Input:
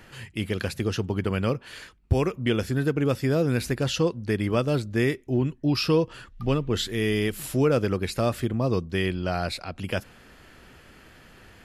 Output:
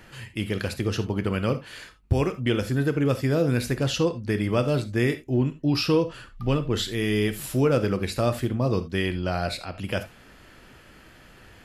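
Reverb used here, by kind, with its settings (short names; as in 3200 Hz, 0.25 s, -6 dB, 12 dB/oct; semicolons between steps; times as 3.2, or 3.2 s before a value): non-linear reverb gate 0.1 s flat, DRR 9.5 dB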